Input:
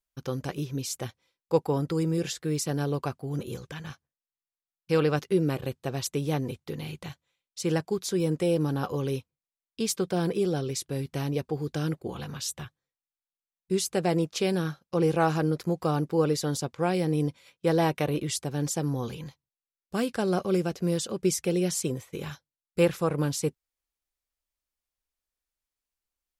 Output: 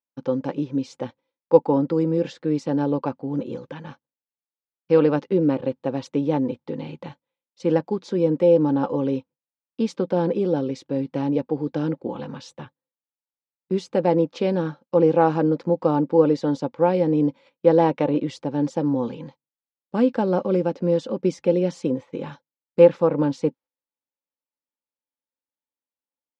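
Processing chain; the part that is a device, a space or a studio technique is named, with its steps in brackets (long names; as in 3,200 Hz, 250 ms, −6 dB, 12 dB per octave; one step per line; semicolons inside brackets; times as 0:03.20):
inside a cardboard box (low-pass filter 4,500 Hz 12 dB per octave; hollow resonant body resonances 270/520/860 Hz, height 14 dB, ringing for 30 ms)
noise gate −42 dBFS, range −9 dB
high-pass filter 130 Hz
high-frequency loss of the air 65 metres
level −2 dB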